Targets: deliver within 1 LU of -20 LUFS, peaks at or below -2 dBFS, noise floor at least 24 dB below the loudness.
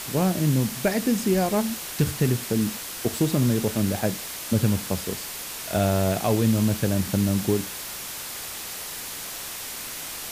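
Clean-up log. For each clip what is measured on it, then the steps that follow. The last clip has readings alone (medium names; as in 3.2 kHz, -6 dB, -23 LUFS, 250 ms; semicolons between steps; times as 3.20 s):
noise floor -35 dBFS; noise floor target -49 dBFS; loudness -25.0 LUFS; peak level -10.5 dBFS; loudness target -20.0 LUFS
-> noise reduction 14 dB, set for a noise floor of -35 dBFS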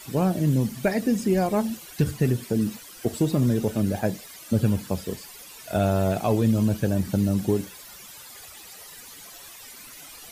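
noise floor -45 dBFS; noise floor target -49 dBFS
-> noise reduction 6 dB, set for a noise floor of -45 dBFS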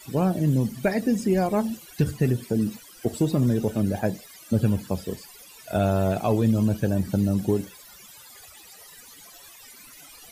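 noise floor -48 dBFS; noise floor target -49 dBFS
-> noise reduction 6 dB, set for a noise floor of -48 dBFS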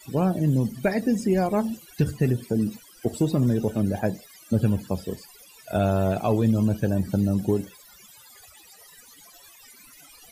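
noise floor -51 dBFS; loudness -25.0 LUFS; peak level -12.0 dBFS; loudness target -20.0 LUFS
-> trim +5 dB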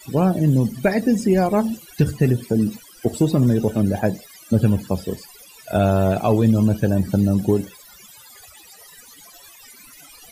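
loudness -20.0 LUFS; peak level -7.0 dBFS; noise floor -46 dBFS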